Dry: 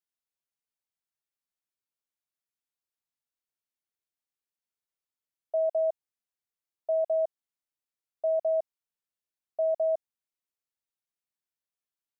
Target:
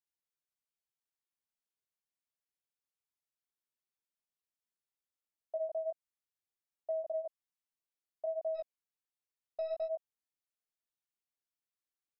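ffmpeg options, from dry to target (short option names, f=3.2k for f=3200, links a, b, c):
-filter_complex "[0:a]asplit=3[a][b][c];[a]afade=t=out:st=8.54:d=0.02[d];[b]aeval=exprs='0.0794*(cos(1*acos(clip(val(0)/0.0794,-1,1)))-cos(1*PI/2))+0.001*(cos(3*acos(clip(val(0)/0.0794,-1,1)))-cos(3*PI/2))+0.00282*(cos(4*acos(clip(val(0)/0.0794,-1,1)))-cos(4*PI/2))+0.00282*(cos(6*acos(clip(val(0)/0.0794,-1,1)))-cos(6*PI/2))+0.00141*(cos(8*acos(clip(val(0)/0.0794,-1,1)))-cos(8*PI/2))':c=same,afade=t=in:st=8.54:d=0.02,afade=t=out:st=9.85:d=0.02[e];[c]afade=t=in:st=9.85:d=0.02[f];[d][e][f]amix=inputs=3:normalize=0,flanger=delay=17:depth=4.4:speed=1.3,acompressor=threshold=-31dB:ratio=6,volume=-2.5dB"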